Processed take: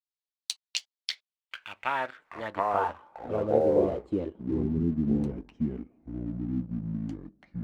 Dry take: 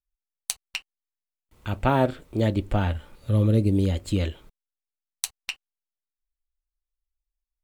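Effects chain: peaking EQ 960 Hz +6.5 dB 0.67 oct; ever faster or slower copies 100 ms, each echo -5 st, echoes 2; band-pass sweep 4.1 kHz -> 240 Hz, 1.03–4.77 s; in parallel at -3 dB: crossover distortion -47.5 dBFS; on the sum: trim -1.5 dB

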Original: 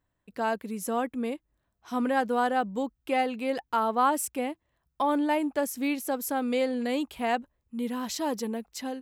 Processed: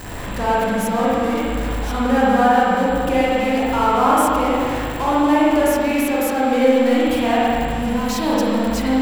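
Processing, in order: jump at every zero crossing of -28.5 dBFS; whistle 7.6 kHz -47 dBFS; spring tank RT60 2.4 s, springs 38/57 ms, chirp 40 ms, DRR -8 dB

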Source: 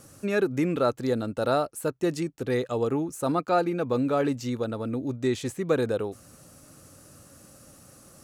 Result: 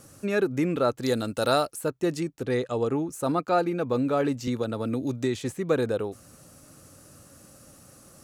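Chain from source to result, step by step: 1.02–1.76 s: treble shelf 2.3 kHz +11.5 dB; 2.45–3.09 s: low-pass 11 kHz 24 dB/octave; 4.47–5.53 s: three bands compressed up and down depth 70%

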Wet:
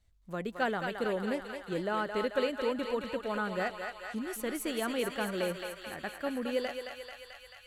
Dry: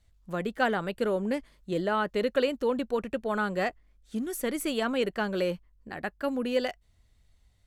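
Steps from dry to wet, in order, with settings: thinning echo 219 ms, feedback 80%, high-pass 650 Hz, level -4.5 dB; trim -5 dB

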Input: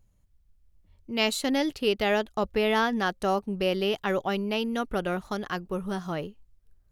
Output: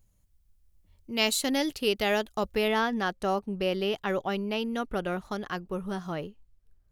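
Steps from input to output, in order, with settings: treble shelf 4.8 kHz +9 dB, from 2.68 s -2 dB; trim -2 dB

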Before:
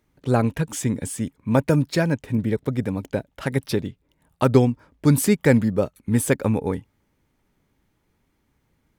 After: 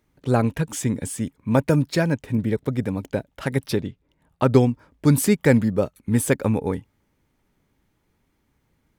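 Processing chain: 3.77–4.49 s: treble shelf 9.4 kHz -> 5 kHz -10 dB

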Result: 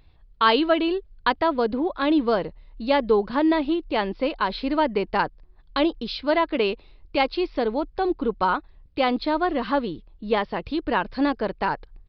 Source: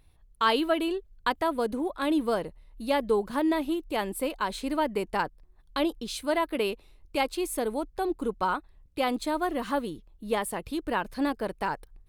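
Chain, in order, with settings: resampled via 11.025 kHz; trim +5.5 dB

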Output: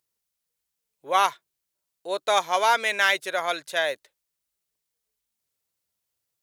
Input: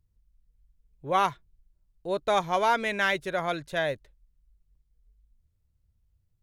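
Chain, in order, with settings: high-pass 500 Hz 12 dB/octave; treble shelf 3.4 kHz +9 dB; trim +3 dB

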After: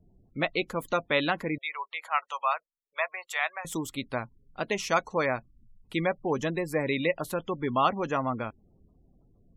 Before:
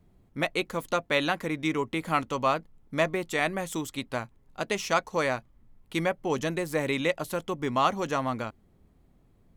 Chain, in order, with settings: spectral gate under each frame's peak -25 dB strong; 1.58–3.65 s: inverse Chebyshev high-pass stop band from 290 Hz, stop band 50 dB

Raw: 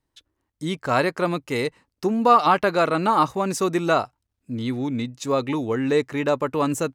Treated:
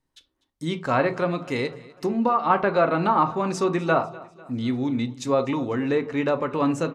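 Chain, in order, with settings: low-pass that closes with the level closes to 2.1 kHz, closed at -15 dBFS; 1.06–2.50 s: compression 2.5:1, threshold -20 dBFS, peak gain reduction 6.5 dB; feedback delay 248 ms, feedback 51%, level -21 dB; on a send at -8 dB: reverberation RT60 0.35 s, pre-delay 3 ms; on the sum: trim -1.5 dB

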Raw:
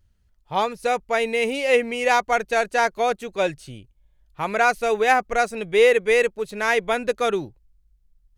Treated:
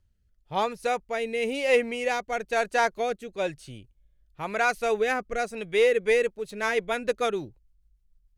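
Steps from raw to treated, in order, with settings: rotary cabinet horn 1 Hz, later 6.7 Hz, at 5.61 s; in parallel at -10.5 dB: hard clipper -14 dBFS, distortion -18 dB; on the sum: trim -5 dB

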